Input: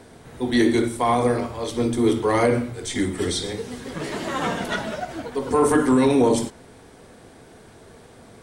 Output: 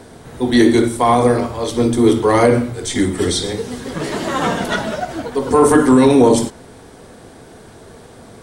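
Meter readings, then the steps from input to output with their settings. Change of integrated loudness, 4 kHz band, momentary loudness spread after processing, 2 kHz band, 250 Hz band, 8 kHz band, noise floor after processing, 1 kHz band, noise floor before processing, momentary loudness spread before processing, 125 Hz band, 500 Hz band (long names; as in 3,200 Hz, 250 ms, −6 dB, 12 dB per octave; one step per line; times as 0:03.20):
+7.0 dB, +6.0 dB, 13 LU, +5.5 dB, +7.0 dB, +7.0 dB, −41 dBFS, +7.0 dB, −48 dBFS, 13 LU, +7.0 dB, +7.0 dB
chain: parametric band 2,300 Hz −3 dB 0.77 octaves
level +7 dB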